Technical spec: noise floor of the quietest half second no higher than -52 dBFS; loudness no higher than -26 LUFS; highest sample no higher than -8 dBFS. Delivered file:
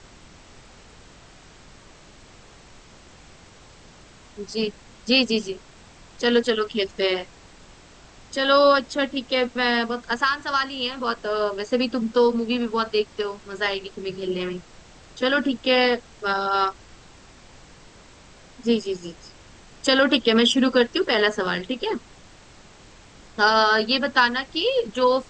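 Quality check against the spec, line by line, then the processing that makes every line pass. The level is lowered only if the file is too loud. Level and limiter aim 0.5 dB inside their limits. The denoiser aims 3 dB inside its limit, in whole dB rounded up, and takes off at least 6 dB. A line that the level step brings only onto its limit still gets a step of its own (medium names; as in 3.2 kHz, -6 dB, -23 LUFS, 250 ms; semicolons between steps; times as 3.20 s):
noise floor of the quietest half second -48 dBFS: fail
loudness -22.0 LUFS: fail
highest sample -5.5 dBFS: fail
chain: trim -4.5 dB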